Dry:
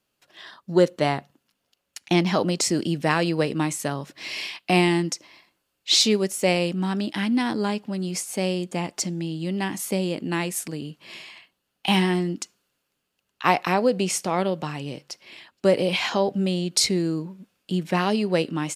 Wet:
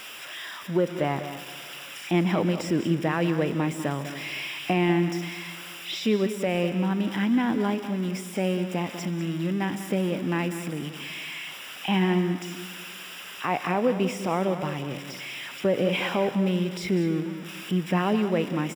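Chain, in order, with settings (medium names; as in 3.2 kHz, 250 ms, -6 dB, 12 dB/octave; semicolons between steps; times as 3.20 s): zero-crossing glitches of -16.5 dBFS; bass shelf 380 Hz +3 dB; peak limiter -11 dBFS, peak gain reduction 8 dB; Savitzky-Golay filter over 25 samples; delay 197 ms -11.5 dB; on a send at -14 dB: reverberation RT60 1.9 s, pre-delay 118 ms; on the sum: trim -2.5 dB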